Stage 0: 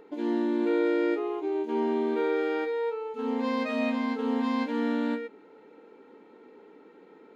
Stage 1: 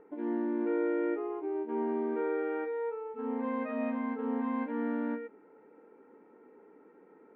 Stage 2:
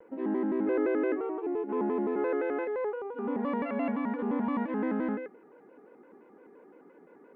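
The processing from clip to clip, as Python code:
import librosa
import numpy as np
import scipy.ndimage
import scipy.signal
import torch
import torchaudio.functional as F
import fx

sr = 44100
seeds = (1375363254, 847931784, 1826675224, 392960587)

y1 = scipy.signal.sosfilt(scipy.signal.butter(4, 2000.0, 'lowpass', fs=sr, output='sos'), x)
y1 = F.gain(torch.from_numpy(y1), -5.0).numpy()
y2 = fx.vibrato_shape(y1, sr, shape='square', rate_hz=5.8, depth_cents=160.0)
y2 = F.gain(torch.from_numpy(y2), 2.5).numpy()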